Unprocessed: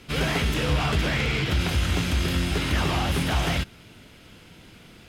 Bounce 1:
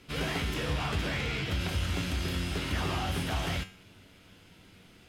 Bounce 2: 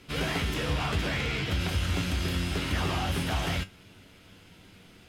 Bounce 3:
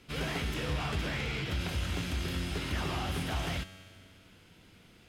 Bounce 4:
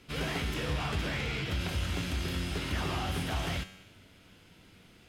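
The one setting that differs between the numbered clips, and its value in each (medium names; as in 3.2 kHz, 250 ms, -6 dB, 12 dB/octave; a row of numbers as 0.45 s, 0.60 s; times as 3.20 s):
feedback comb, decay: 0.43 s, 0.17 s, 2.1 s, 0.97 s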